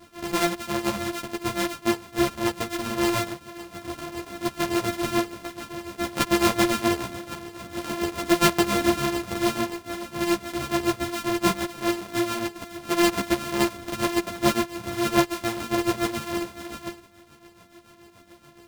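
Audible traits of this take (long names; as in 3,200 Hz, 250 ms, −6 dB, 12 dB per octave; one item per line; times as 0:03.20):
a buzz of ramps at a fixed pitch in blocks of 128 samples
tremolo triangle 7 Hz, depth 75%
a shimmering, thickened sound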